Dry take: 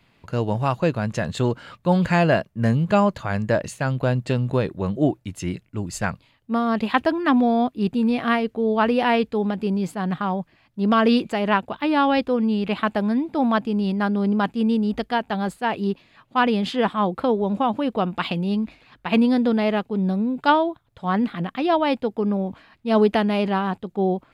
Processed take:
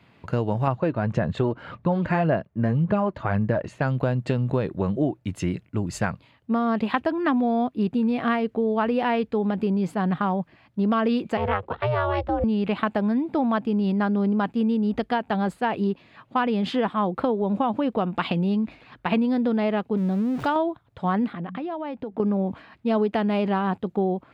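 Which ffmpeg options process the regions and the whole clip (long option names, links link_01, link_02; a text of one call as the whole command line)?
ffmpeg -i in.wav -filter_complex "[0:a]asettb=1/sr,asplit=3[link_01][link_02][link_03];[link_01]atrim=end=0.674[link_04];[link_02]atrim=start=0.67:end=3.82,asetpts=PTS-STARTPTS,afade=type=in:duration=0.004:curve=qsin,afade=type=out:start_time=3.146:duration=0.004:curve=qsin,aphaser=in_gain=1:out_gain=1:delay=3.3:decay=0.39:speed=1.8:type=sinusoidal,aemphasis=mode=reproduction:type=75fm[link_05];[link_03]atrim=start=3.816[link_06];[link_04][link_05]acrossfade=duration=0.004:curve1=hsin:curve2=qsin[link_07];[link_07][link_06]acrossfade=duration=0.004:curve1=qsin:curve2=hsin,asettb=1/sr,asplit=3[link_08][link_09][link_10];[link_08]atrim=end=11.374[link_11];[link_09]atrim=start=11.37:end=12.44,asetpts=PTS-STARTPTS,afade=type=in:duration=0.004:curve=qsin,afade=type=out:start_time=1.066:duration=0.004:curve=qsin,lowpass=frequency=3200:poles=1,aeval=exprs='val(0)*sin(2*PI*240*n/s)':channel_layout=same,afreqshift=54[link_12];[link_10]atrim=start=12.436[link_13];[link_11][link_12]acrossfade=duration=0.004:curve1=hsin:curve2=qsin[link_14];[link_14][link_13]acrossfade=duration=0.004:curve1=qsin:curve2=hsin,asettb=1/sr,asplit=3[link_15][link_16][link_17];[link_15]atrim=end=19.974[link_18];[link_16]atrim=start=19.97:end=20.56,asetpts=PTS-STARTPTS,afade=type=in:duration=0.004:curve=qsin,afade=type=out:start_time=0.586:duration=0.004:curve=qsin,aeval=exprs='val(0)+0.5*0.0251*sgn(val(0))':channel_layout=same,acompressor=threshold=-31dB:ratio=1.5:attack=3.2:release=140:knee=1:detection=peak[link_19];[link_17]atrim=start=20.556[link_20];[link_18][link_19]acrossfade=duration=0.004:curve1=hsin:curve2=qsin[link_21];[link_21][link_20]acrossfade=duration=0.004:curve1=qsin:curve2=hsin,asettb=1/sr,asplit=3[link_22][link_23][link_24];[link_22]atrim=end=21.334[link_25];[link_23]atrim=start=21.33:end=22.2,asetpts=PTS-STARTPTS,afade=type=in:duration=0.004:curve=qsin,afade=type=out:start_time=0.866:duration=0.004:curve=qsin,highshelf=frequency=3300:gain=-10.5,bandreject=frequency=61.11:width_type=h:width=4,bandreject=frequency=122.22:width_type=h:width=4,bandreject=frequency=183.33:width_type=h:width=4,acompressor=threshold=-32dB:ratio=16:attack=3.2:release=140:knee=1:detection=peak[link_26];[link_24]atrim=start=22.196[link_27];[link_25][link_26]acrossfade=duration=0.004:curve1=hsin:curve2=qsin[link_28];[link_28][link_27]acrossfade=duration=0.004:curve1=qsin:curve2=hsin,highpass=63,highshelf=frequency=3900:gain=-11.5,acompressor=threshold=-26dB:ratio=4,volume=5dB" out.wav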